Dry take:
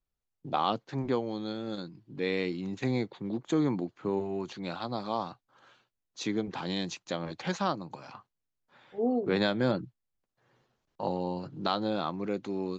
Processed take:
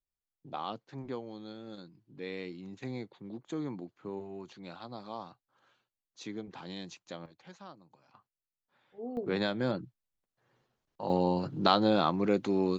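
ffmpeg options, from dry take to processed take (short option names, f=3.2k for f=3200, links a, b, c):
-af "asetnsamples=n=441:p=0,asendcmd='7.26 volume volume -19.5dB;8.14 volume volume -12dB;9.17 volume volume -4dB;11.1 volume volume 5dB',volume=-9.5dB"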